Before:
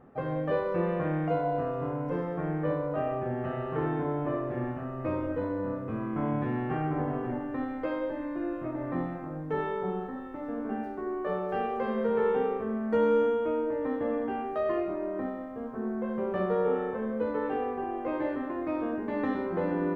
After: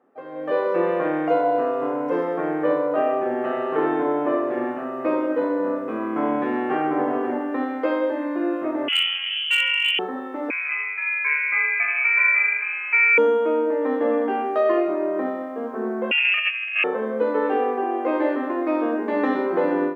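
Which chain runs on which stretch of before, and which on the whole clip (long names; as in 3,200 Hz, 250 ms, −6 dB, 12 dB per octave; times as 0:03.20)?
0:08.88–0:09.99: voice inversion scrambler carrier 3,200 Hz + hard clipping −24 dBFS
0:10.50–0:13.18: high-pass filter 340 Hz + voice inversion scrambler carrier 2,800 Hz
0:16.11–0:16.84: voice inversion scrambler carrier 3,000 Hz + compressor whose output falls as the input rises −31 dBFS, ratio −0.5
whole clip: high-pass filter 270 Hz 24 dB per octave; automatic gain control gain up to 16.5 dB; level −6 dB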